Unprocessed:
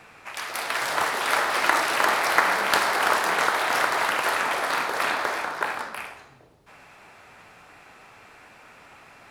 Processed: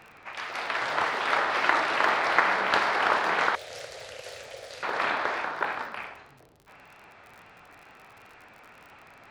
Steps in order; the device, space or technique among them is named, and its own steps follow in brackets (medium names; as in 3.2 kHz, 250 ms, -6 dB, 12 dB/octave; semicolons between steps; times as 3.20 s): lo-fi chain (low-pass 3.9 kHz 12 dB/octave; wow and flutter; crackle 40 per s -39 dBFS); 3.55–4.83 s: FFT filter 120 Hz 0 dB, 170 Hz -17 dB, 330 Hz -22 dB, 520 Hz -3 dB, 990 Hz -29 dB, 6.9 kHz +3 dB; trim -2 dB